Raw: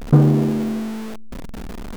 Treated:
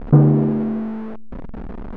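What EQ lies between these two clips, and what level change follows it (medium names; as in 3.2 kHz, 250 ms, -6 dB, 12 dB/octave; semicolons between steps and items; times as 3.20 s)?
low-pass 1.4 kHz 12 dB/octave; +1.0 dB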